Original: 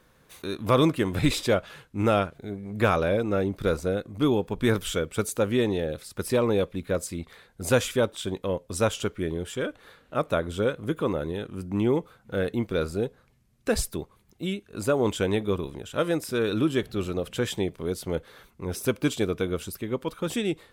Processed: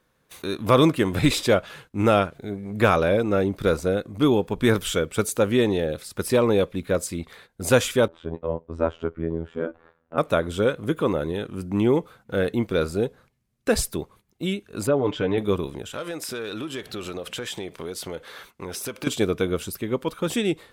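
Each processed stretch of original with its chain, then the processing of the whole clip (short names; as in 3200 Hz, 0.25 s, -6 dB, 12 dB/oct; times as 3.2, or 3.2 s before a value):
8.08–10.18 LPF 1200 Hz + robotiser 82.3 Hz
14.87–15.38 compressor 2:1, threshold -25 dBFS + air absorption 250 m + comb 6.8 ms, depth 66%
15.93–19.07 high shelf 4400 Hz +7 dB + overdrive pedal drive 10 dB, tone 3600 Hz, clips at -12 dBFS + compressor 5:1, threshold -33 dBFS
whole clip: low shelf 77 Hz -5 dB; gate -53 dBFS, range -11 dB; gain +4 dB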